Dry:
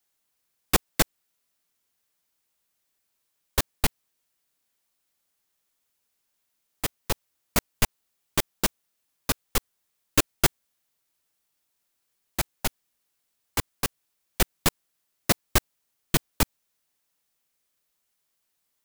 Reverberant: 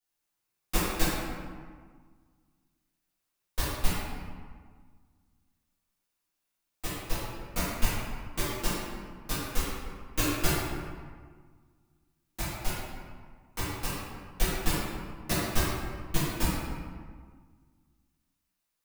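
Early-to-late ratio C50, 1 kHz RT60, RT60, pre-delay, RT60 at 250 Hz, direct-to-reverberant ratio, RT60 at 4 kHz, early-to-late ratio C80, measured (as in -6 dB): -2.5 dB, 1.7 s, 1.7 s, 4 ms, 2.0 s, -11.5 dB, 1.0 s, 0.0 dB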